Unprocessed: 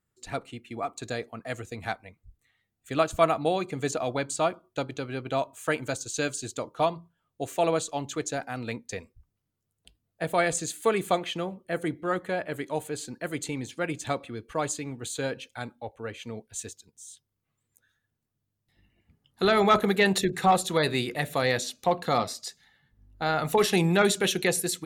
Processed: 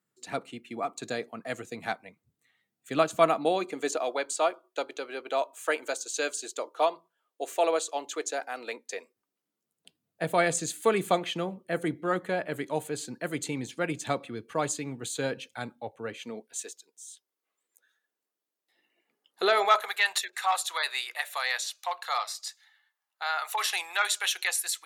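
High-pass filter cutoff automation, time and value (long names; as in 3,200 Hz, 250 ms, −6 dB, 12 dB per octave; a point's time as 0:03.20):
high-pass filter 24 dB per octave
0:03.07 150 Hz
0:04.17 370 Hz
0:08.96 370 Hz
0:10.25 120 Hz
0:16.05 120 Hz
0:16.68 360 Hz
0:19.43 360 Hz
0:19.93 890 Hz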